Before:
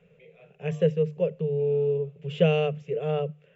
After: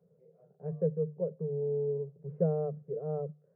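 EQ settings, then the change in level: Gaussian low-pass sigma 8.9 samples; high-pass 110 Hz; -6.0 dB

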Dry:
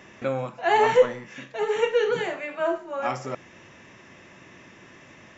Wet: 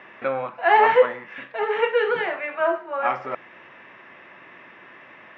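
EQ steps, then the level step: band-pass filter 1.6 kHz, Q 0.67; distance through air 350 m; +9.0 dB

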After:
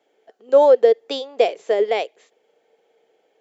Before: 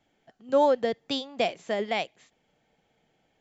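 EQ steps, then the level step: resonant high-pass 440 Hz, resonance Q 4.9; +2.0 dB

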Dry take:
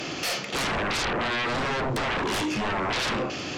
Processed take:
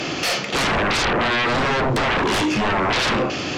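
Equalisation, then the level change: treble shelf 9.6 kHz -8.5 dB; +7.5 dB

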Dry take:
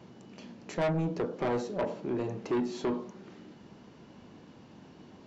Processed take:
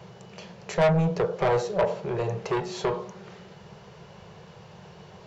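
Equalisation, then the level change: Chebyshev band-stop 170–430 Hz, order 2; +9.0 dB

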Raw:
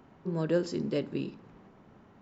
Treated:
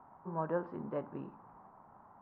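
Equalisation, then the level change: four-pole ladder low-pass 1.1 kHz, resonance 30%; resonant low shelf 660 Hz -13.5 dB, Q 1.5; +11.5 dB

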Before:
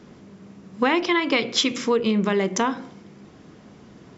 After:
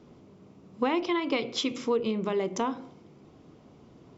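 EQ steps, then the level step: peaking EQ 200 Hz -8 dB 0.2 oct; peaking EQ 1.7 kHz -9.5 dB 0.55 oct; treble shelf 3.5 kHz -8 dB; -5.0 dB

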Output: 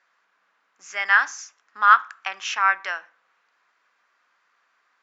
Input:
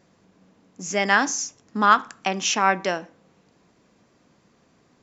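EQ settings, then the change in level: resonant high-pass 1.4 kHz, resonance Q 2.2; distance through air 51 m; treble shelf 3.9 kHz -9 dB; -1.0 dB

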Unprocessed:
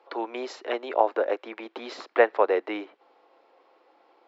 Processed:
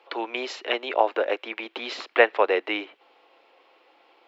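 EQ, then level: peaking EQ 2.8 kHz +11 dB 1.1 oct; treble shelf 5.2 kHz +4 dB; 0.0 dB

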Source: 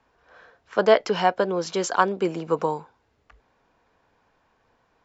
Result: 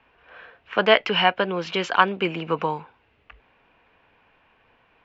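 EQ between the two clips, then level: dynamic bell 470 Hz, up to -6 dB, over -32 dBFS, Q 0.78; resonant low-pass 2.7 kHz, resonance Q 3.8; +3.0 dB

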